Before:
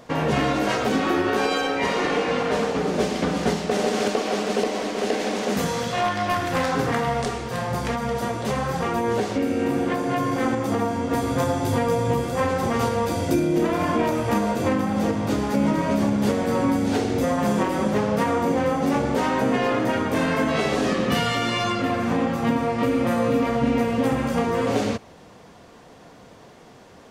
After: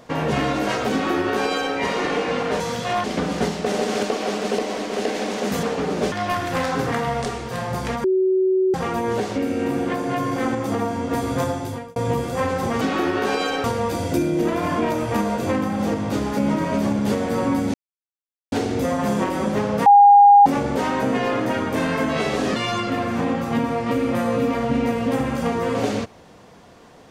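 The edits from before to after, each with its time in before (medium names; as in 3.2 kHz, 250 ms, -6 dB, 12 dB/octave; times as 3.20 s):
0.92–1.75 s: copy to 12.81 s
2.60–3.09 s: swap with 5.68–6.12 s
8.04–8.74 s: bleep 376 Hz -15 dBFS
11.43–11.96 s: fade out
16.91 s: insert silence 0.78 s
18.25–18.85 s: bleep 812 Hz -6.5 dBFS
20.95–21.48 s: delete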